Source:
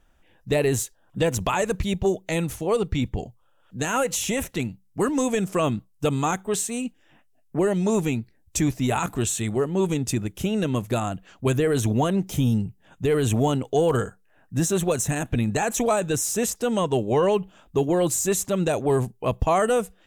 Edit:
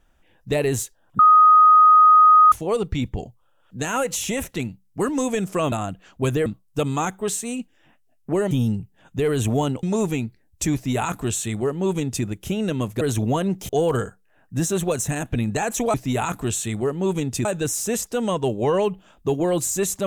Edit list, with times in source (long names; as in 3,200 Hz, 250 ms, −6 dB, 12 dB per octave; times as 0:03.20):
0:01.19–0:02.52: beep over 1,250 Hz −8.5 dBFS
0:08.68–0:10.19: duplicate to 0:15.94
0:10.95–0:11.69: move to 0:05.72
0:12.37–0:13.69: move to 0:07.77